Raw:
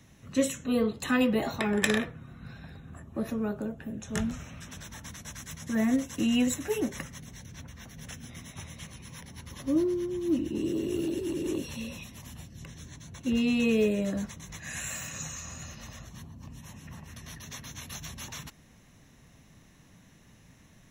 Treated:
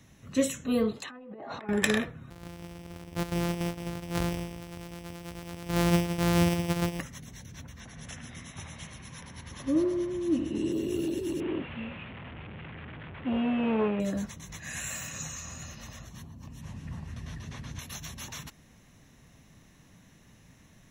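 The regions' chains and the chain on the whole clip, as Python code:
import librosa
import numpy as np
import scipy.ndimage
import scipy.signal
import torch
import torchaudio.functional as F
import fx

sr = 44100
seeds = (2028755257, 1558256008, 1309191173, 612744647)

y = fx.chain(x, sr, fx.highpass(hz=690.0, slope=6),
    fx.env_lowpass_down(base_hz=940.0, full_db=-29.0),
    fx.over_compress(threshold_db=-43.0, ratio=-1.0), at=(0.96, 1.69))
y = fx.chain(y, sr, fx.sample_sort(block=256),
    fx.echo_single(ms=168, db=-8.5), at=(2.3, 7.0))
y = fx.chain(y, sr, fx.brickwall_lowpass(high_hz=11000.0),
    fx.echo_wet_bandpass(ms=75, feedback_pct=66, hz=1200.0, wet_db=-3), at=(7.8, 10.72))
y = fx.chain(y, sr, fx.delta_mod(bps=16000, step_db=-36.5),
    fx.highpass(hz=55.0, slope=12),
    fx.transformer_sat(knee_hz=490.0), at=(11.4, 14.0))
y = fx.chain(y, sr, fx.delta_mod(bps=64000, step_db=-50.0),
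    fx.lowpass(hz=3300.0, slope=6),
    fx.low_shelf(hz=200.0, db=9.0), at=(16.61, 17.79))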